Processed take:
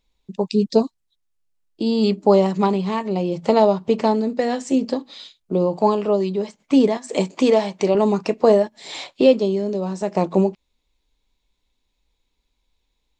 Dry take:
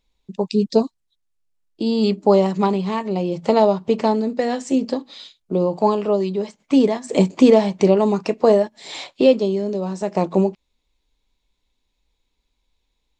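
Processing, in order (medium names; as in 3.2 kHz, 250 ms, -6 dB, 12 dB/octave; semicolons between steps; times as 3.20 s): 6.97–7.95 s: bass shelf 290 Hz -11 dB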